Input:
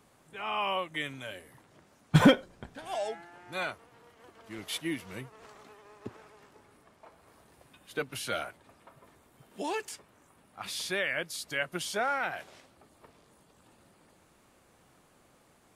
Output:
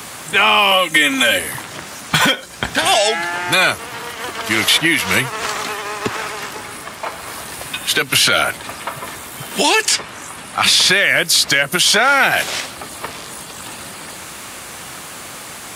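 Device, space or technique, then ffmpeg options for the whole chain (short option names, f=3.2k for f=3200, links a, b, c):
mastering chain: -filter_complex "[0:a]asettb=1/sr,asplit=3[a][b][c];[a]atrim=end=0.714[d];[b]atrim=start=0.71:end=1.38,asetpts=PTS-STARTPTS,afade=t=in:d=0.004:c=qsin,afade=t=out:st=0.666:d=0.004:c=qsin,aecho=1:1:3.8:0.9,atrim=end_sample=29547[e];[c]atrim=start=1.376[f];[d][e]acrossfade=d=0.004:c1=hsin:c2=qsin[g];[g][f]acrossfade=d=0.004:c1=qsin:c2=hsin,asettb=1/sr,asplit=3[h][i][j];[h]atrim=end=9.824[k];[i]atrim=start=9.82:end=10.89,asetpts=PTS-STARTPTS,afade=t=in:d=0.004:c=qsin,afade=t=out:st=1.066:d=0.004:c=qsin,lowpass=11k[l];[j]atrim=start=10.886[m];[k][l]acrossfade=d=0.004:c1=hsin:c2=qsin[n];[n][m]acrossfade=d=0.004:c1=qsin:c2=hsin,highpass=51,equalizer=f=490:t=o:w=1.4:g=-2,acrossover=split=560|1900|5900[o][p][q][r];[o]acompressor=threshold=-44dB:ratio=4[s];[p]acompressor=threshold=-47dB:ratio=4[t];[q]acompressor=threshold=-48dB:ratio=4[u];[r]acompressor=threshold=-58dB:ratio=4[v];[s][t][u][v]amix=inputs=4:normalize=0,acompressor=threshold=-41dB:ratio=2.5,asoftclip=type=tanh:threshold=-30.5dB,tiltshelf=f=970:g=-6,alimiter=level_in=32dB:limit=-1dB:release=50:level=0:latency=1,volume=-1.5dB"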